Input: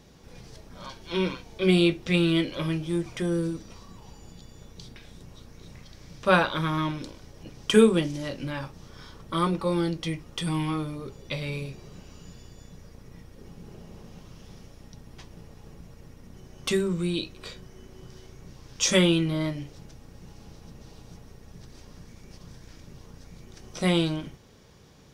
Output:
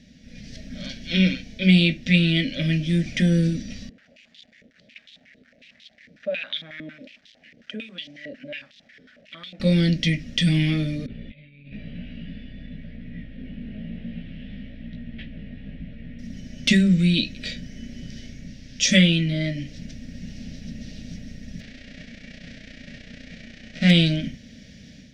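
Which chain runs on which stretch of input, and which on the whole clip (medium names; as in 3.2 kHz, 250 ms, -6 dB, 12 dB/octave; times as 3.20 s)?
3.89–9.60 s: compression 3:1, threshold -26 dBFS + word length cut 8-bit, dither none + step-sequenced band-pass 11 Hz 430–3500 Hz
11.06–16.19 s: steep low-pass 3.4 kHz + compressor with a negative ratio -41 dBFS, ratio -0.5 + chorus 1 Hz, delay 17 ms, depth 3.4 ms
21.59–23.89 s: formants flattened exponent 0.3 + tape spacing loss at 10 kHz 28 dB
whole clip: FFT filter 130 Hz 0 dB, 250 Hz +14 dB, 370 Hz -11 dB, 620 Hz +3 dB, 1 kHz -28 dB, 1.8 kHz +9 dB, 5.7 kHz +5 dB, 11 kHz -11 dB; level rider gain up to 8 dB; bass shelf 110 Hz +5.5 dB; trim -4 dB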